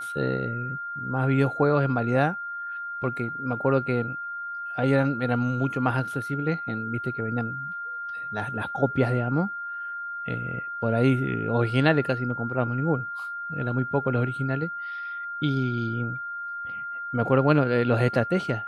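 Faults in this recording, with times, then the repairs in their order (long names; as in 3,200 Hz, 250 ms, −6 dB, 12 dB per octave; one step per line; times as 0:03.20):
whistle 1,400 Hz −31 dBFS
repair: notch filter 1,400 Hz, Q 30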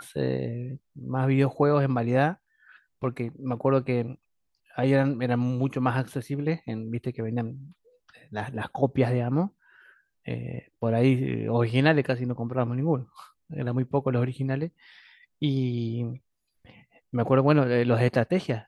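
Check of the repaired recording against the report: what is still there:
none of them is left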